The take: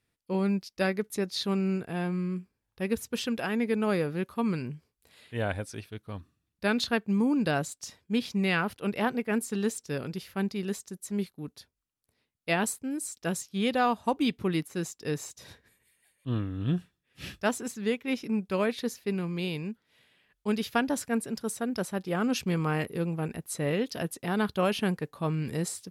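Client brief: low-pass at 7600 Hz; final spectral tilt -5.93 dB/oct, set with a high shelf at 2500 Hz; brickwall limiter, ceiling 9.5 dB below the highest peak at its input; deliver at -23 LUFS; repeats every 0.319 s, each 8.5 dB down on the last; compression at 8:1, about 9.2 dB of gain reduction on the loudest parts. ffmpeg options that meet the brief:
-af "lowpass=7.6k,highshelf=f=2.5k:g=-7,acompressor=threshold=-32dB:ratio=8,alimiter=level_in=6dB:limit=-24dB:level=0:latency=1,volume=-6dB,aecho=1:1:319|638|957|1276:0.376|0.143|0.0543|0.0206,volume=17dB"

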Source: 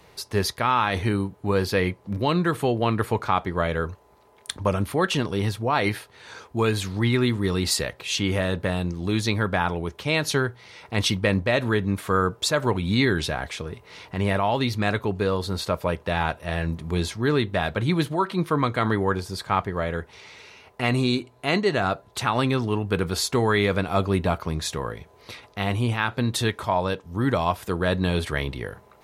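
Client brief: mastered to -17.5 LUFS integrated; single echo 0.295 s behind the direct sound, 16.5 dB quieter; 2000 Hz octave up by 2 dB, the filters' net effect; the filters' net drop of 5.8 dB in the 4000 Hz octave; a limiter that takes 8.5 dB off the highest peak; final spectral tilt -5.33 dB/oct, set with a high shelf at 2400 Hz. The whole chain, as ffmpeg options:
-af "equalizer=f=2k:t=o:g=5.5,highshelf=f=2.4k:g=-4,equalizer=f=4k:t=o:g=-5.5,alimiter=limit=-15dB:level=0:latency=1,aecho=1:1:295:0.15,volume=9.5dB"

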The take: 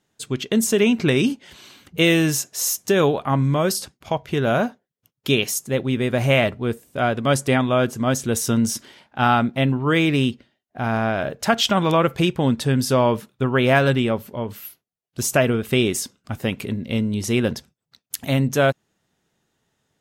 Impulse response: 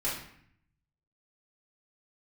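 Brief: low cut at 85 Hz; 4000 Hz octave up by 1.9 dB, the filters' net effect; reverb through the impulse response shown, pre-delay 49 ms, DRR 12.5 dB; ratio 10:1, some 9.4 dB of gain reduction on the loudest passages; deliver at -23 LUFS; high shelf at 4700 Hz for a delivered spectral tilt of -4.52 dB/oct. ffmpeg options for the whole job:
-filter_complex "[0:a]highpass=85,equalizer=f=4k:t=o:g=4.5,highshelf=f=4.7k:g=-4,acompressor=threshold=-22dB:ratio=10,asplit=2[a][b];[1:a]atrim=start_sample=2205,adelay=49[c];[b][c]afir=irnorm=-1:irlink=0,volume=-19dB[d];[a][d]amix=inputs=2:normalize=0,volume=4.5dB"

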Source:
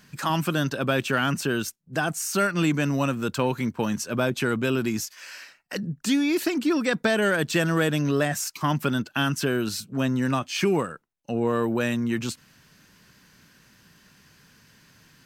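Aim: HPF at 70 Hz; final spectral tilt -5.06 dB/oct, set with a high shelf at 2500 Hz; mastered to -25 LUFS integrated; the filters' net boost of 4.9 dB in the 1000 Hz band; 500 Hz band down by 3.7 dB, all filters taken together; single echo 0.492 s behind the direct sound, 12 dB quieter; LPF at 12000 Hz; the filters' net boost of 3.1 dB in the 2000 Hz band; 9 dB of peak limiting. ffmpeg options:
-af "highpass=70,lowpass=12k,equalizer=f=500:t=o:g=-7,equalizer=f=1k:t=o:g=8,equalizer=f=2k:t=o:g=3.5,highshelf=f=2.5k:g=-5,alimiter=limit=-17dB:level=0:latency=1,aecho=1:1:492:0.251,volume=2.5dB"

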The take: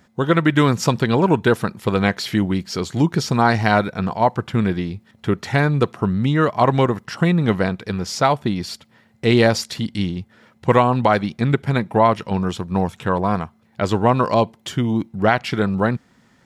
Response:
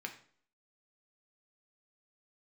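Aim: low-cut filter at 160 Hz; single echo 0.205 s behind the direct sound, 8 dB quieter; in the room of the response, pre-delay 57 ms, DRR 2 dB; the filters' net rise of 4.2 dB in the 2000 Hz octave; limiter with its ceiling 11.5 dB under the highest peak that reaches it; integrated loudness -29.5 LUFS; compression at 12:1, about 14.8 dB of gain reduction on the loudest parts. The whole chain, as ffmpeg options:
-filter_complex "[0:a]highpass=160,equalizer=f=2k:t=o:g=5.5,acompressor=threshold=-24dB:ratio=12,alimiter=limit=-19dB:level=0:latency=1,aecho=1:1:205:0.398,asplit=2[a][b];[1:a]atrim=start_sample=2205,adelay=57[c];[b][c]afir=irnorm=-1:irlink=0,volume=-2dB[d];[a][d]amix=inputs=2:normalize=0"

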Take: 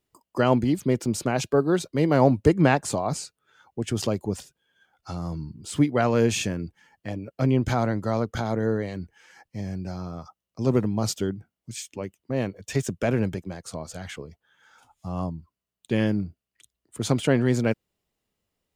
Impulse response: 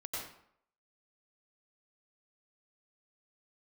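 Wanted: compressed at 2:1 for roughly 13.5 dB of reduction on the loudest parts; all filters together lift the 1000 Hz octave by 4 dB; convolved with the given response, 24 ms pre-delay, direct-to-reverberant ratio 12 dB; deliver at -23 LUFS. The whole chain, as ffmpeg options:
-filter_complex "[0:a]equalizer=f=1k:t=o:g=5.5,acompressor=threshold=-37dB:ratio=2,asplit=2[a][b];[1:a]atrim=start_sample=2205,adelay=24[c];[b][c]afir=irnorm=-1:irlink=0,volume=-13.5dB[d];[a][d]amix=inputs=2:normalize=0,volume=12.5dB"

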